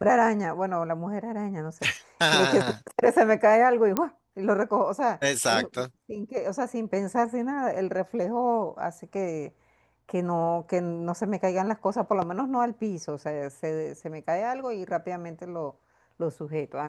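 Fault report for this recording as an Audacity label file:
3.970000	3.970000	pop -10 dBFS

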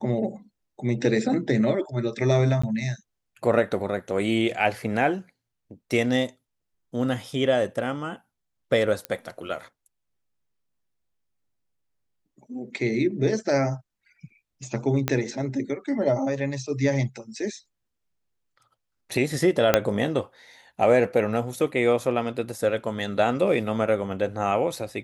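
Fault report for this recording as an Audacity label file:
2.620000	2.630000	dropout 15 ms
9.050000	9.050000	pop -14 dBFS
15.080000	15.080000	pop -8 dBFS
19.740000	19.740000	pop -2 dBFS

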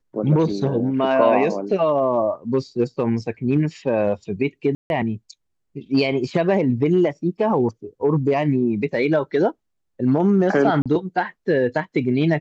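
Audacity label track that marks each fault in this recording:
4.750000	4.900000	dropout 151 ms
10.820000	10.860000	dropout 36 ms

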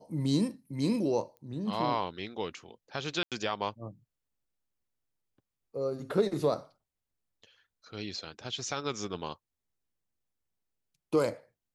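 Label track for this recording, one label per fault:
1.370000	1.370000	pop -37 dBFS
3.230000	3.320000	dropout 87 ms

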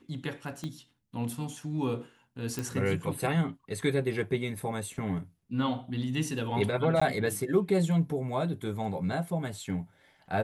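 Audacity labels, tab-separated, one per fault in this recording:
0.640000	0.640000	pop -24 dBFS
2.590000	2.590000	pop
7.000000	7.010000	dropout 15 ms

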